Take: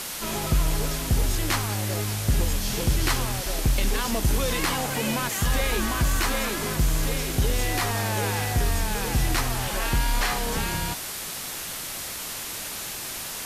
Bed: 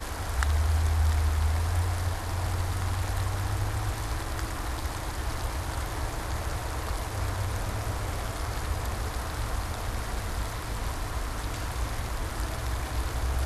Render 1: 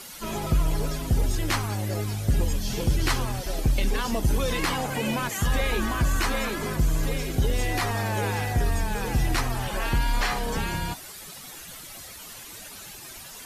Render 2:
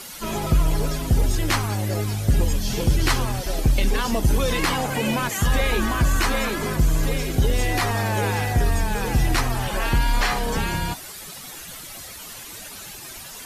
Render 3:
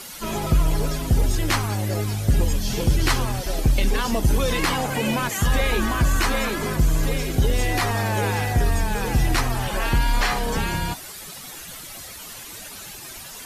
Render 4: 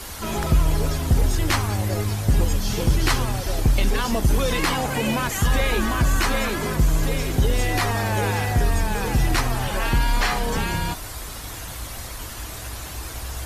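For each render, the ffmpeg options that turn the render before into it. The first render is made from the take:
ffmpeg -i in.wav -af "afftdn=noise_reduction=12:noise_floor=-34" out.wav
ffmpeg -i in.wav -af "volume=4dB" out.wav
ffmpeg -i in.wav -af anull out.wav
ffmpeg -i in.wav -i bed.wav -filter_complex "[1:a]volume=-4dB[link_01];[0:a][link_01]amix=inputs=2:normalize=0" out.wav

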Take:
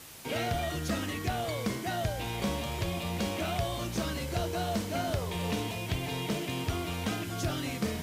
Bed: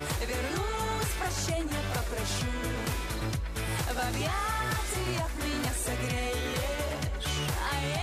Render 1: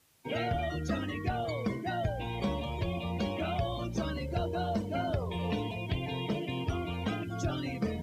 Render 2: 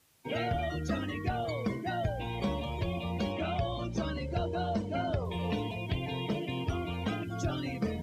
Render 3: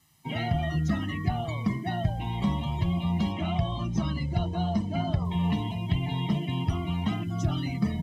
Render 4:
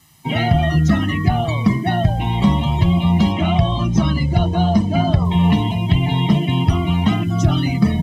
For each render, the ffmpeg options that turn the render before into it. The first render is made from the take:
ffmpeg -i in.wav -af "afftdn=noise_reduction=19:noise_floor=-38" out.wav
ffmpeg -i in.wav -filter_complex "[0:a]asettb=1/sr,asplit=3[link_01][link_02][link_03];[link_01]atrim=end=3.324[link_04];[link_02]atrim=start=3.32:end=5.25,asetpts=PTS-STARTPTS,afade=type=in:duration=0.004:curve=qsin,afade=type=out:start_time=1.926:duration=0.004:curve=qsin,lowpass=7800[link_05];[link_03]atrim=start=5.246[link_06];[link_04][link_05]acrossfade=duration=0.004:curve1=hsin:curve2=qsin[link_07];[link_07][link_06]acrossfade=duration=0.004:curve1=qsin:curve2=hsin" out.wav
ffmpeg -i in.wav -af "equalizer=frequency=160:width_type=o:width=0.56:gain=8.5,aecho=1:1:1:0.77" out.wav
ffmpeg -i in.wav -af "volume=12dB,alimiter=limit=-3dB:level=0:latency=1" out.wav

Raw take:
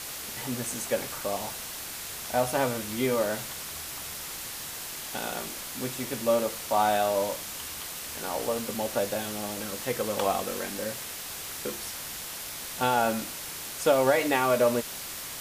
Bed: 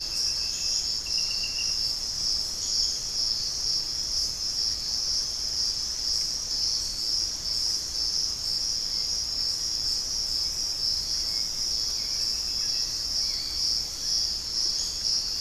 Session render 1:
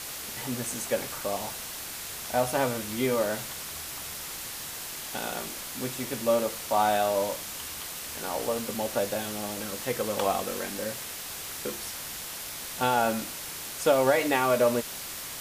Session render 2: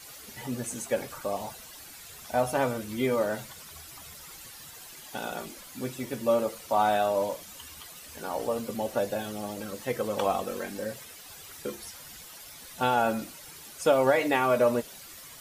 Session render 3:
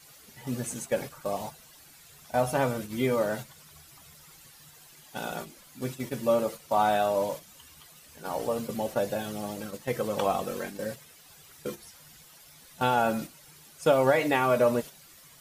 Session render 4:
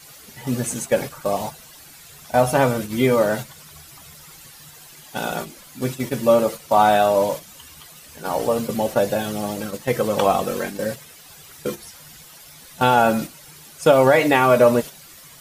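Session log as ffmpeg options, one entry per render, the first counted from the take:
ffmpeg -i in.wav -af anull out.wav
ffmpeg -i in.wav -af "afftdn=noise_reduction=12:noise_floor=-38" out.wav
ffmpeg -i in.wav -af "equalizer=frequency=150:width=4.2:gain=9.5,agate=range=-7dB:threshold=-36dB:ratio=16:detection=peak" out.wav
ffmpeg -i in.wav -af "volume=9dB,alimiter=limit=-3dB:level=0:latency=1" out.wav

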